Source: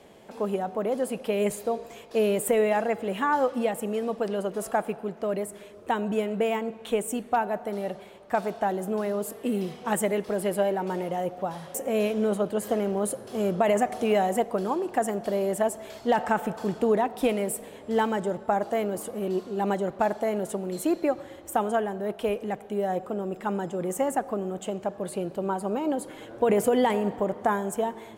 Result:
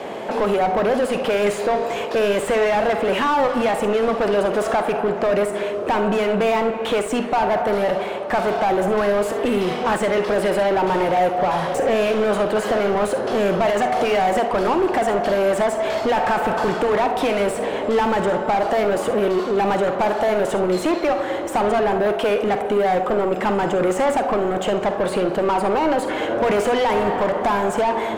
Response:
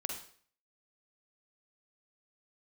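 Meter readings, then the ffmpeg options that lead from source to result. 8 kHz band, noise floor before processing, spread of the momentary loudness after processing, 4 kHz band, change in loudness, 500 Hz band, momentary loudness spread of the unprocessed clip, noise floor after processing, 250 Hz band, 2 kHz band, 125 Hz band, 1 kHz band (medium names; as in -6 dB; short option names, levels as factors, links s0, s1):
+1.5 dB, -46 dBFS, 3 LU, +11.5 dB, +8.0 dB, +8.0 dB, 8 LU, -26 dBFS, +5.5 dB, +10.5 dB, +5.5 dB, +9.0 dB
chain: -filter_complex "[0:a]acrossover=split=850|7600[s0][s1][s2];[s0]acompressor=threshold=0.02:ratio=4[s3];[s1]acompressor=threshold=0.0224:ratio=4[s4];[s2]acompressor=threshold=0.00251:ratio=4[s5];[s3][s4][s5]amix=inputs=3:normalize=0,asplit=2[s6][s7];[s7]highpass=f=720:p=1,volume=25.1,asoftclip=type=tanh:threshold=0.15[s8];[s6][s8]amix=inputs=2:normalize=0,lowpass=f=1100:p=1,volume=0.501,asplit=2[s9][s10];[1:a]atrim=start_sample=2205,atrim=end_sample=3528[s11];[s10][s11]afir=irnorm=-1:irlink=0,volume=1.26[s12];[s9][s12]amix=inputs=2:normalize=0"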